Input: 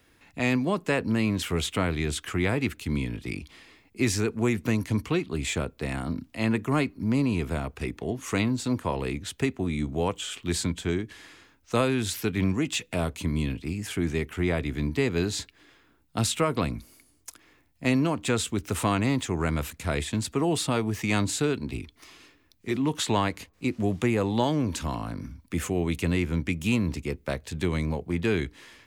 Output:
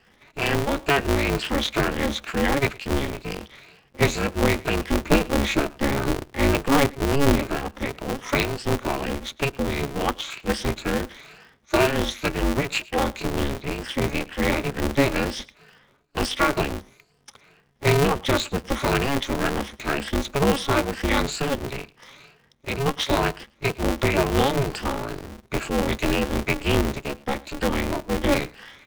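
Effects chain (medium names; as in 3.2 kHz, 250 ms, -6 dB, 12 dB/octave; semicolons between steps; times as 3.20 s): drifting ripple filter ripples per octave 1.3, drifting +2.1 Hz, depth 22 dB; 5.01–7.36 s: bass shelf 240 Hz +8.5 dB; low-pass 4.3 kHz 12 dB/octave; bass shelf 69 Hz -8.5 dB; delay 109 ms -23 dB; polarity switched at an audio rate 140 Hz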